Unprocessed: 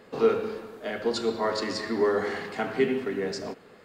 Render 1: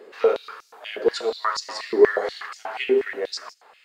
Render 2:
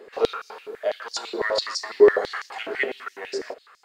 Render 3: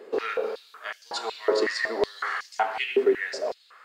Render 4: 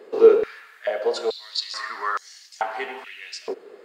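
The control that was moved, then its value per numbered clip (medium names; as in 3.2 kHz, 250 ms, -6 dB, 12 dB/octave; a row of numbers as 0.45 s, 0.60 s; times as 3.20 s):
step-sequenced high-pass, rate: 8.3 Hz, 12 Hz, 5.4 Hz, 2.3 Hz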